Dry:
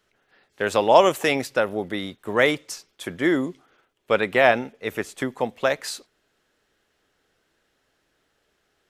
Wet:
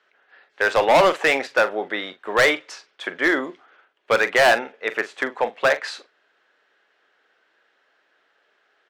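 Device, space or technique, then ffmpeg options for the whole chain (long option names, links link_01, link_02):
megaphone: -filter_complex "[0:a]highpass=520,lowpass=3300,equalizer=frequency=1600:width_type=o:width=0.46:gain=4,asoftclip=type=hard:threshold=-17dB,asplit=2[link_01][link_02];[link_02]adelay=43,volume=-13dB[link_03];[link_01][link_03]amix=inputs=2:normalize=0,volume=6dB"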